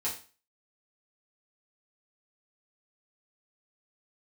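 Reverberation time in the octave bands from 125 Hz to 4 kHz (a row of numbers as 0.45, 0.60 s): 0.35, 0.35, 0.35, 0.35, 0.35, 0.35 s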